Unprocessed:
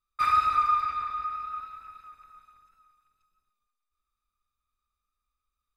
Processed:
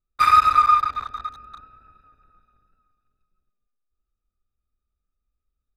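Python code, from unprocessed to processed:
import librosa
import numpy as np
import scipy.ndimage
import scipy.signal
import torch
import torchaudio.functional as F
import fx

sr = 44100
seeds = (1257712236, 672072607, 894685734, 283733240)

y = fx.wiener(x, sr, points=41)
y = fx.high_shelf(y, sr, hz=4000.0, db=6.5)
y = y * librosa.db_to_amplitude(8.5)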